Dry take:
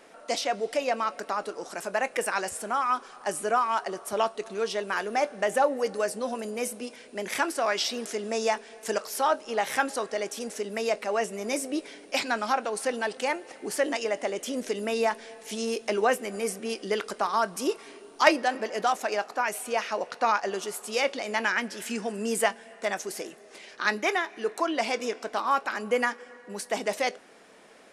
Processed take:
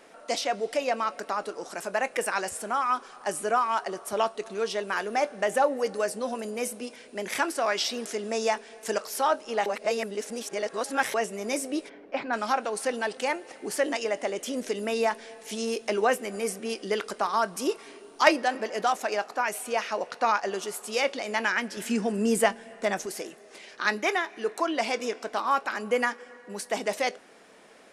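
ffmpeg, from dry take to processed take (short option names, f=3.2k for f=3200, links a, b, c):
-filter_complex "[0:a]asplit=3[a][b][c];[a]afade=t=out:st=11.88:d=0.02[d];[b]lowpass=1.6k,afade=t=in:st=11.88:d=0.02,afade=t=out:st=12.32:d=0.02[e];[c]afade=t=in:st=12.32:d=0.02[f];[d][e][f]amix=inputs=3:normalize=0,asettb=1/sr,asplit=3[g][h][i];[g]atrim=end=21.774[j];[h]atrim=start=21.77:end=23.06,asetpts=PTS-STARTPTS,afade=t=in:d=0.004:c=qsin,afade=t=out:st=1.286:d=0.004:c=qsin,lowshelf=f=350:g=9.5[k];[i]atrim=start=23.056[l];[j][k]acrossfade=d=0.004:c1=hsin:c2=qsin[m];[m][l]acrossfade=d=0.004:c1=qsin:c2=hsin,asplit=3[n][o][p];[n]atrim=end=9.662[q];[o]atrim=start=9.658:end=11.142,asetpts=PTS-STARTPTS,areverse[r];[p]atrim=start=11.138[s];[q][r]acrossfade=d=0.004:c1=hsin:c2=hsin[t];[t][s]acrossfade=d=0.004:c1=hsin:c2=hsin"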